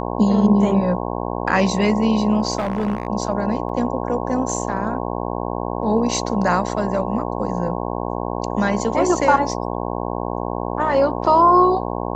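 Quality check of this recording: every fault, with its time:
mains buzz 60 Hz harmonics 18 −25 dBFS
0:02.58–0:03.07: clipping −17 dBFS
0:03.69: drop-out 2.4 ms

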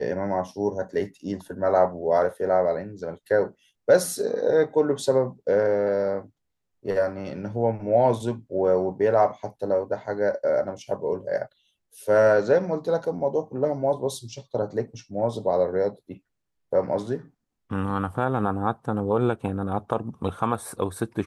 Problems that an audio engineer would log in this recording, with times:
0:17.90–0:17.91: drop-out 5.5 ms

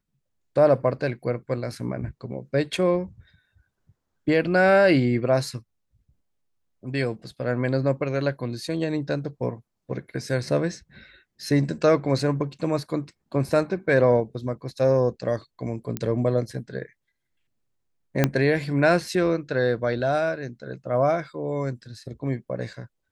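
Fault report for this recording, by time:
0:15.97: click −13 dBFS
0:18.24: click −5 dBFS

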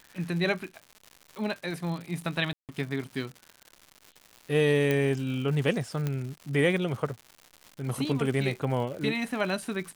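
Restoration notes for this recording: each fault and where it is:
surface crackle 200 per second −37 dBFS
0:02.53–0:02.69: drop-out 158 ms
0:04.91: click −14 dBFS
0:06.07: click −17 dBFS

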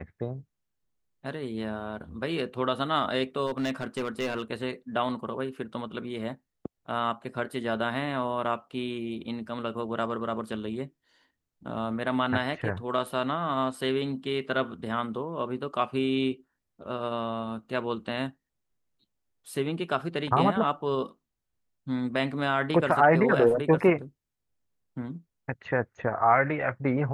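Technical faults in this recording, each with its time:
0:03.46–0:04.42: clipping −24.5 dBFS

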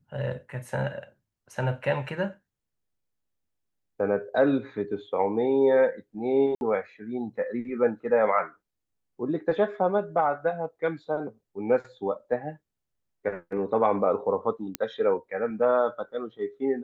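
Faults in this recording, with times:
0:06.55–0:06.61: drop-out 61 ms
0:14.75: click −11 dBFS

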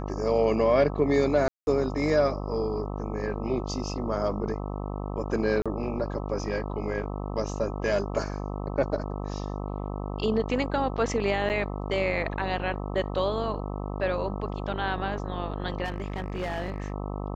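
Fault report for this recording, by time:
mains buzz 50 Hz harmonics 26 −33 dBFS
0:01.48–0:01.67: drop-out 191 ms
0:05.62–0:05.66: drop-out 36 ms
0:11.49–0:11.50: drop-out 8.8 ms
0:15.84–0:16.92: clipping −26.5 dBFS

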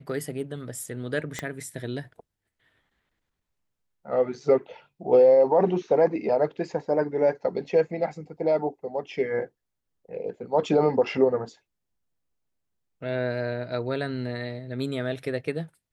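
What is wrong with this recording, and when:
0:01.39: click −15 dBFS

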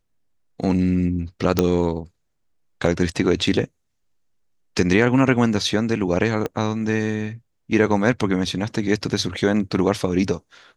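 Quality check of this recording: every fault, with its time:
0:01.59: click −4 dBFS
0:06.46: click −12 dBFS

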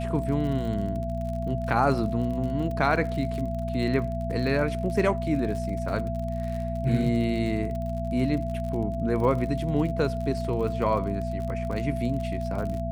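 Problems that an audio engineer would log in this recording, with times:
surface crackle 43 per second −33 dBFS
mains hum 60 Hz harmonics 4 −31 dBFS
whistle 670 Hz −32 dBFS

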